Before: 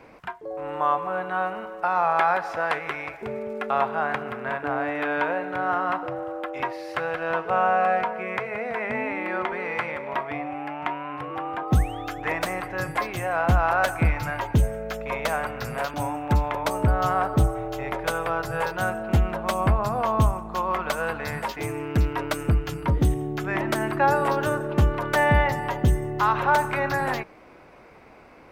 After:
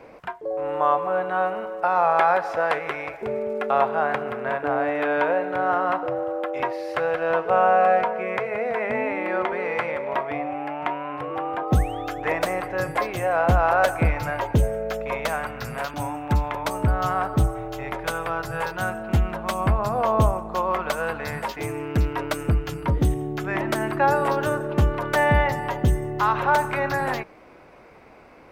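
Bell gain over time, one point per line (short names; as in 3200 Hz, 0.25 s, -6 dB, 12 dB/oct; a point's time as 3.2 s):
bell 530 Hz 1 oct
14.95 s +6.5 dB
15.4 s -2.5 dB
19.58 s -2.5 dB
20.29 s +9.5 dB
20.97 s +1.5 dB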